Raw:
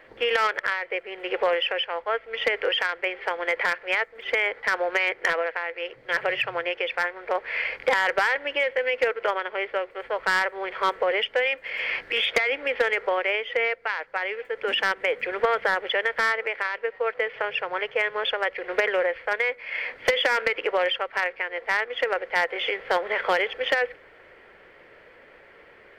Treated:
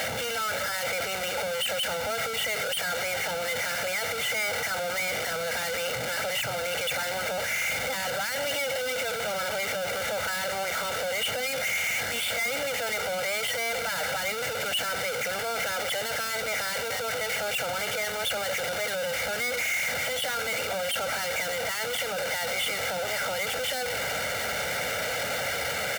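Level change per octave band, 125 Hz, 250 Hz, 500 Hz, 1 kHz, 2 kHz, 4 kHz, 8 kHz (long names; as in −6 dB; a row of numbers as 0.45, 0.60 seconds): can't be measured, −1.5 dB, −4.5 dB, −4.0 dB, −4.0 dB, +1.0 dB, +17.5 dB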